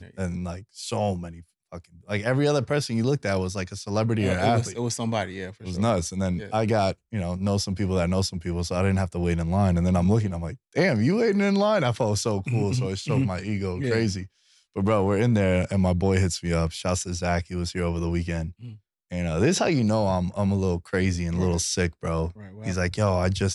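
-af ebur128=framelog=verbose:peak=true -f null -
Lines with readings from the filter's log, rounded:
Integrated loudness:
  I:         -25.0 LUFS
  Threshold: -35.4 LUFS
Loudness range:
  LRA:         3.4 LU
  Threshold: -45.2 LUFS
  LRA low:   -26.7 LUFS
  LRA high:  -23.3 LUFS
True peak:
  Peak:       -8.8 dBFS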